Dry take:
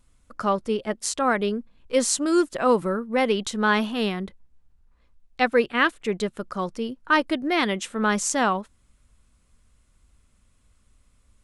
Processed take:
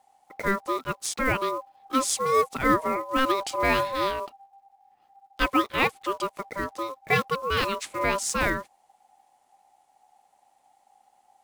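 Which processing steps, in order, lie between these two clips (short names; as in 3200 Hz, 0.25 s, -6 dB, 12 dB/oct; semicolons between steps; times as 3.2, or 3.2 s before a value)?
block floating point 5-bit; 2.15–4.2 low shelf 120 Hz +10 dB; ring modulator 790 Hz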